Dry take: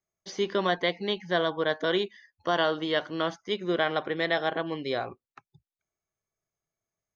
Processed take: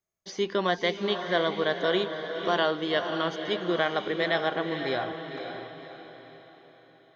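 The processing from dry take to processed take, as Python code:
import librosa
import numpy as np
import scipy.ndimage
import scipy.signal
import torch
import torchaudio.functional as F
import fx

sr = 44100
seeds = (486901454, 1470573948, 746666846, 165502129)

y = fx.echo_diffused(x, sr, ms=533, feedback_pct=43, wet_db=-7.0)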